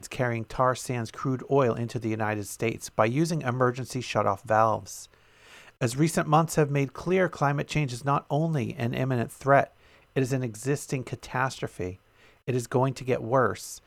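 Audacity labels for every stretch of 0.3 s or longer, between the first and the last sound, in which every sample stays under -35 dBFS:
5.030000	5.810000	silence
9.660000	10.160000	silence
11.930000	12.480000	silence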